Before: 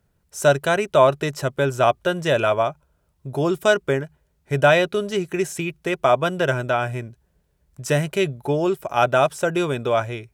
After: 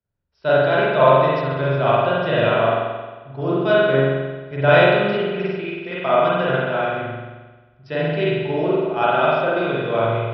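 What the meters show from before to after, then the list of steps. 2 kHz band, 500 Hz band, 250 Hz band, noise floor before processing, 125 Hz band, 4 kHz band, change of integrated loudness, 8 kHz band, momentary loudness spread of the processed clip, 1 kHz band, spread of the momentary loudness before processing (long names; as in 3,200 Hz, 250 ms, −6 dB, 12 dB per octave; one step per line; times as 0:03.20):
+2.5 dB, +2.5 dB, +2.0 dB, −67 dBFS, +2.5 dB, +1.0 dB, +2.0 dB, below −35 dB, 14 LU, +2.5 dB, 10 LU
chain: downsampling to 11,025 Hz
spring reverb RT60 1.8 s, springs 44 ms, chirp 25 ms, DRR −7 dB
multiband upward and downward expander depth 40%
level −5.5 dB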